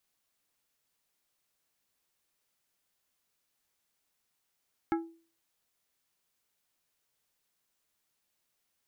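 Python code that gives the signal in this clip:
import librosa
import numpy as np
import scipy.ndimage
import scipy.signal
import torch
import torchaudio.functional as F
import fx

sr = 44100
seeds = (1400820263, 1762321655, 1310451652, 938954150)

y = fx.strike_glass(sr, length_s=0.89, level_db=-24.0, body='plate', hz=331.0, decay_s=0.41, tilt_db=4.5, modes=5)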